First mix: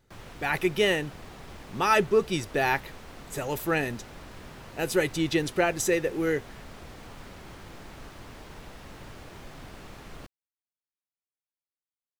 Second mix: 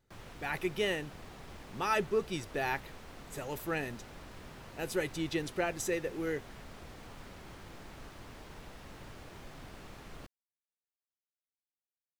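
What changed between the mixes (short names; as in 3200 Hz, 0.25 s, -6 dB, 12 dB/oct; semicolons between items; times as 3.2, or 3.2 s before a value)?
speech -8.5 dB; background -4.5 dB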